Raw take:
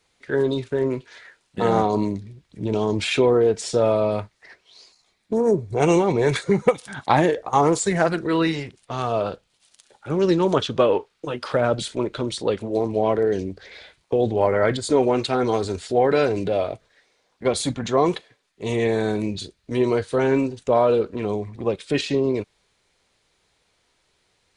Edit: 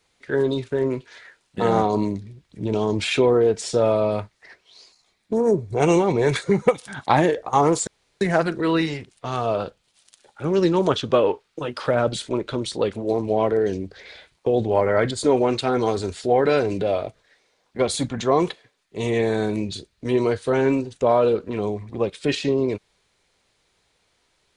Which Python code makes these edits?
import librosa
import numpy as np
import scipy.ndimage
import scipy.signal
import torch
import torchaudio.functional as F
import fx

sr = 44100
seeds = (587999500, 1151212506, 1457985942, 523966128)

y = fx.edit(x, sr, fx.insert_room_tone(at_s=7.87, length_s=0.34), tone=tone)